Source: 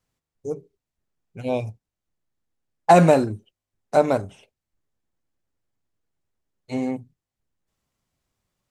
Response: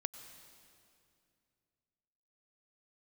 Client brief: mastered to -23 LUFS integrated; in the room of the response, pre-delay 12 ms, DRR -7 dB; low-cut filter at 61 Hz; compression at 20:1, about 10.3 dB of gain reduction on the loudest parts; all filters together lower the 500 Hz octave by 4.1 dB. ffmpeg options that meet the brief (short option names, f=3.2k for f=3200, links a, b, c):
-filter_complex "[0:a]highpass=61,equalizer=f=500:t=o:g=-5.5,acompressor=threshold=-20dB:ratio=20,asplit=2[a][b];[1:a]atrim=start_sample=2205,adelay=12[c];[b][c]afir=irnorm=-1:irlink=0,volume=8dB[d];[a][d]amix=inputs=2:normalize=0"